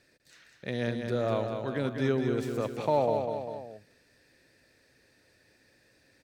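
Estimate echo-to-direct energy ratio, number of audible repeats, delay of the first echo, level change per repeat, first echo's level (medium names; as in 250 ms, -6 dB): -4.5 dB, 3, 199 ms, -5.0 dB, -6.0 dB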